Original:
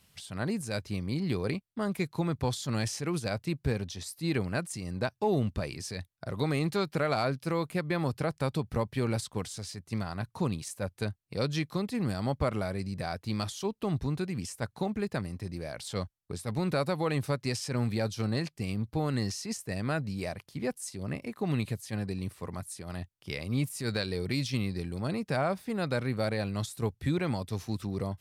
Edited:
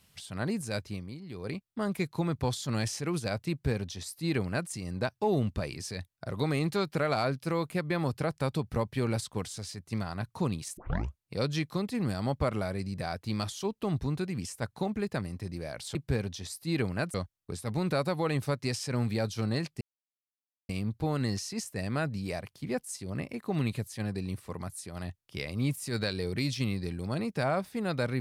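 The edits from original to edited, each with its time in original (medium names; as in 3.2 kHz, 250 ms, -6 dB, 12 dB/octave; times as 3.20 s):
0.76–1.72 s: dip -13.5 dB, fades 0.42 s
3.51–4.70 s: copy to 15.95 s
10.77 s: tape start 0.46 s
18.62 s: insert silence 0.88 s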